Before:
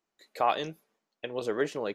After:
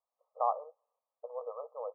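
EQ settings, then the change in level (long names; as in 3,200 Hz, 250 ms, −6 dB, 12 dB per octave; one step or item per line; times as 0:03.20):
linear-phase brick-wall band-pass 460–1,300 Hz
−4.0 dB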